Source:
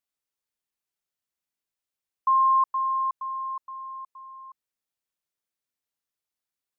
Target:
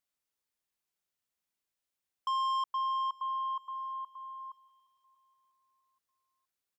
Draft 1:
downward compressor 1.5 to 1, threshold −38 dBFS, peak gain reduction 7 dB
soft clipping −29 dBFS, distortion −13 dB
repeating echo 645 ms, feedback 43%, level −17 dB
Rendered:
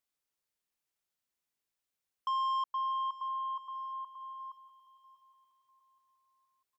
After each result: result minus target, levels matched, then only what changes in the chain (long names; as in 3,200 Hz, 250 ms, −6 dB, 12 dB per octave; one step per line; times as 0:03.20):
echo-to-direct +8 dB; downward compressor: peak gain reduction +3 dB
change: repeating echo 645 ms, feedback 43%, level −25 dB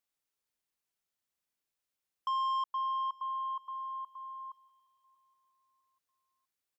downward compressor: peak gain reduction +3 dB
change: downward compressor 1.5 to 1, threshold −29.5 dBFS, peak gain reduction 4 dB